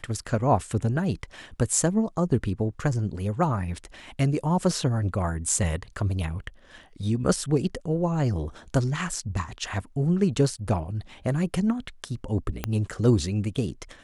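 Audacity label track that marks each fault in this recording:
12.640000	12.640000	click −12 dBFS

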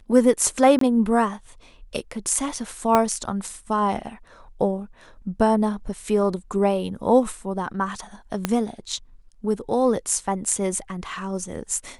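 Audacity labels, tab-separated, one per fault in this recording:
0.790000	0.810000	drop-out 23 ms
2.950000	2.950000	click −5 dBFS
8.450000	8.450000	click −7 dBFS

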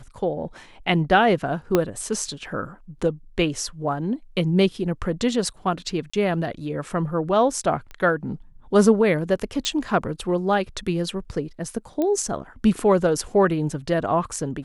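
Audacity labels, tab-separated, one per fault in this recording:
1.750000	1.750000	click −5 dBFS
6.100000	6.130000	drop-out 35 ms
7.910000	7.910000	click −24 dBFS
9.650000	9.650000	click −10 dBFS
12.020000	12.020000	click −13 dBFS

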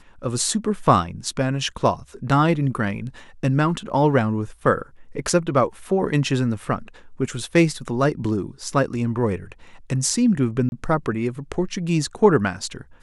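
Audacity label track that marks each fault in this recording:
10.690000	10.720000	drop-out 31 ms

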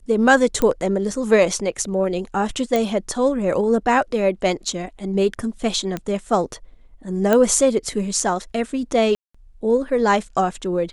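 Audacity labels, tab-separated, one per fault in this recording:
0.620000	0.620000	click −8 dBFS
2.760000	2.760000	click
5.970000	5.970000	click −13 dBFS
7.330000	7.330000	click −5 dBFS
9.150000	9.350000	drop-out 195 ms

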